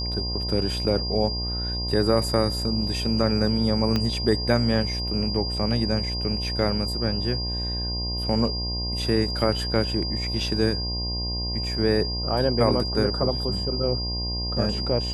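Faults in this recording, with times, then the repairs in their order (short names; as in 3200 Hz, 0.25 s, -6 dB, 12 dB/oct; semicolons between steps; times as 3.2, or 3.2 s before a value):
buzz 60 Hz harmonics 18 -30 dBFS
tone 4800 Hz -29 dBFS
3.96 pop -11 dBFS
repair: de-click; de-hum 60 Hz, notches 18; notch 4800 Hz, Q 30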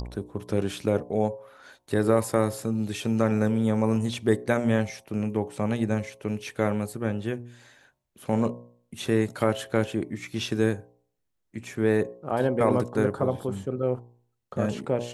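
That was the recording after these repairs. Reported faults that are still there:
3.96 pop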